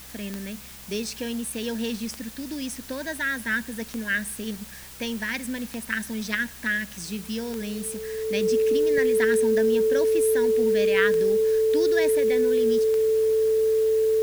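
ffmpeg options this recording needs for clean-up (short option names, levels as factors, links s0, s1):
-af "adeclick=t=4,bandreject=f=64.2:t=h:w=4,bandreject=f=128.4:t=h:w=4,bandreject=f=192.6:t=h:w=4,bandreject=f=256.8:t=h:w=4,bandreject=f=440:w=30,afwtdn=0.0063"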